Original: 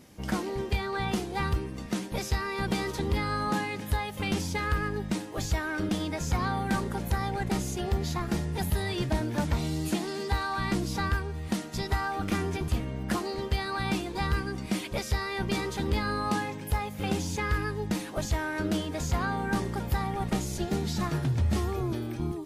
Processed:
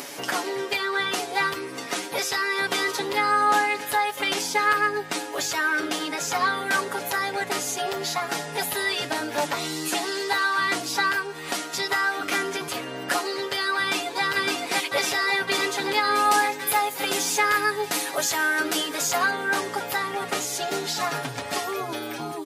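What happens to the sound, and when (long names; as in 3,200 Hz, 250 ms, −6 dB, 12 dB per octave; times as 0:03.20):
0:13.79–0:14.23: delay throw 560 ms, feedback 75%, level −1.5 dB
0:16.14–0:19.31: high-shelf EQ 7,400 Hz +9 dB
whole clip: high-pass filter 550 Hz 12 dB per octave; comb filter 7.1 ms, depth 92%; upward compression, threshold −34 dBFS; level +7.5 dB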